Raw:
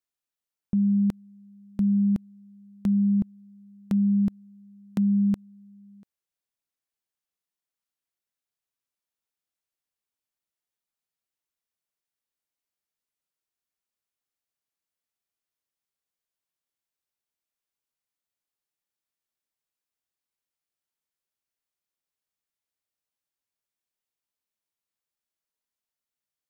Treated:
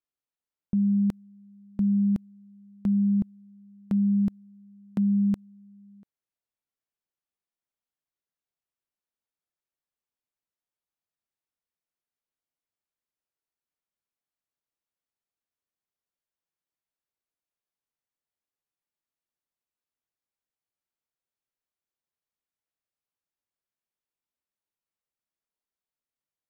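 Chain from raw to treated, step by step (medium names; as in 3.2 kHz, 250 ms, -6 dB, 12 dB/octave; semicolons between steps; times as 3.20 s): tape noise reduction on one side only decoder only; trim -1 dB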